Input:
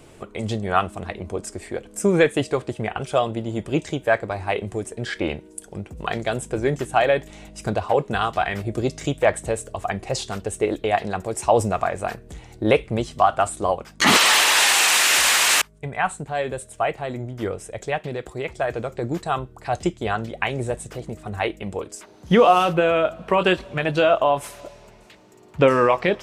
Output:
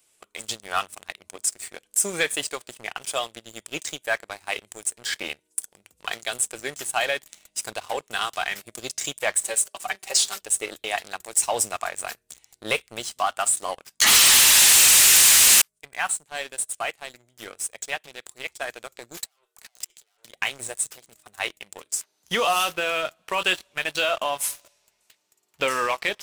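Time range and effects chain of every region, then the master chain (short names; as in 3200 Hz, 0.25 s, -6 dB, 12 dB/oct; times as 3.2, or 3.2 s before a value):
9.41–10.41 HPF 350 Hz + comb 5.2 ms, depth 87%
19.17–20.25 steep high-pass 400 Hz 48 dB/oct + tube stage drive 34 dB, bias 0.55 + negative-ratio compressor -43 dBFS, ratio -0.5
whole clip: pre-emphasis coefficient 0.97; notches 50/100 Hz; sample leveller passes 3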